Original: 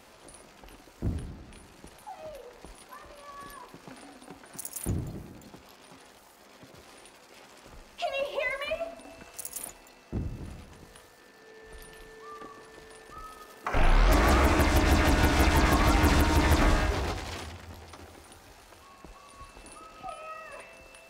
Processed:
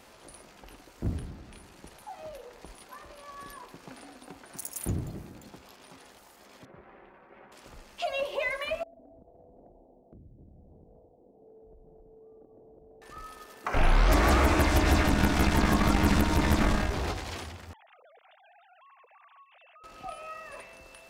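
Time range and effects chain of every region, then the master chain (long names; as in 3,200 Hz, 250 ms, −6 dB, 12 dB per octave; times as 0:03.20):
0:06.65–0:07.52: low-pass filter 2,000 Hz 24 dB per octave + comb filter 5.3 ms, depth 33%
0:08.83–0:13.02: Butterworth low-pass 740 Hz 48 dB per octave + downward compressor, threshold −50 dBFS
0:15.03–0:17.00: gain on one half-wave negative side −7 dB + parametric band 200 Hz +10 dB 0.48 octaves
0:17.73–0:19.84: three sine waves on the formant tracks + downward compressor, threshold −54 dBFS
whole clip: no processing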